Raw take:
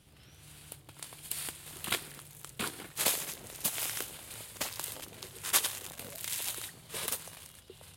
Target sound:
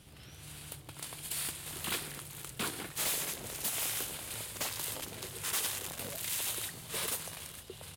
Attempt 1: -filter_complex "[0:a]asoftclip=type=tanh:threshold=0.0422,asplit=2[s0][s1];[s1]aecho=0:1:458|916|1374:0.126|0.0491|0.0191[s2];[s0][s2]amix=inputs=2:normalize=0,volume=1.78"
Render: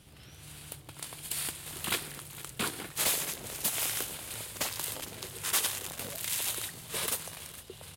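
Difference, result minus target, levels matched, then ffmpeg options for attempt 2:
saturation: distortion -4 dB
-filter_complex "[0:a]asoftclip=type=tanh:threshold=0.0178,asplit=2[s0][s1];[s1]aecho=0:1:458|916|1374:0.126|0.0491|0.0191[s2];[s0][s2]amix=inputs=2:normalize=0,volume=1.78"

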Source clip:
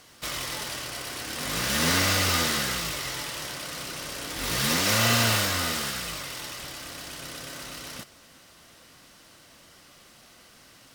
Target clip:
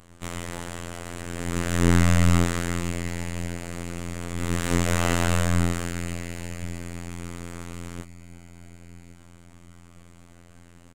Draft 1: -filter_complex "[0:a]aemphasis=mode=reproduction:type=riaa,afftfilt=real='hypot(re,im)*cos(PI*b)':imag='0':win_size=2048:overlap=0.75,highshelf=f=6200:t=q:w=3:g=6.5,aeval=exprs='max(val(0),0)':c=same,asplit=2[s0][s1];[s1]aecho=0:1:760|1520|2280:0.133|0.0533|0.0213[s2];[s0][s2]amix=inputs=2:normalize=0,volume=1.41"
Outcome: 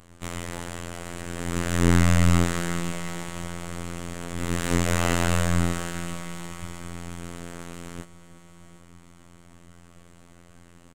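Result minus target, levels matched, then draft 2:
echo 355 ms early
-filter_complex "[0:a]aemphasis=mode=reproduction:type=riaa,afftfilt=real='hypot(re,im)*cos(PI*b)':imag='0':win_size=2048:overlap=0.75,highshelf=f=6200:t=q:w=3:g=6.5,aeval=exprs='max(val(0),0)':c=same,asplit=2[s0][s1];[s1]aecho=0:1:1115|2230|3345:0.133|0.0533|0.0213[s2];[s0][s2]amix=inputs=2:normalize=0,volume=1.41"

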